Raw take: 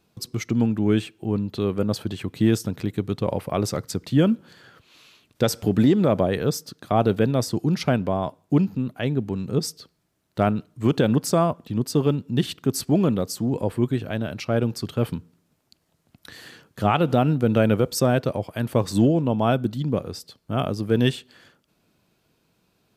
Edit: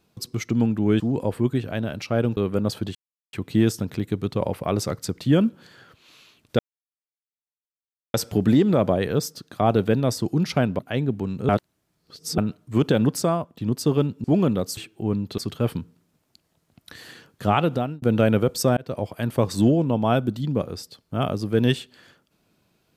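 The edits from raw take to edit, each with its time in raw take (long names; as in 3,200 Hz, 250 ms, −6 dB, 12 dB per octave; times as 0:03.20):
0:01.00–0:01.61: swap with 0:13.38–0:14.75
0:02.19: splice in silence 0.38 s
0:05.45: splice in silence 1.55 s
0:08.10–0:08.88: remove
0:09.58–0:10.47: reverse
0:11.22–0:11.66: fade out, to −9.5 dB
0:12.33–0:12.85: remove
0:16.98–0:17.39: fade out
0:18.14–0:18.40: fade in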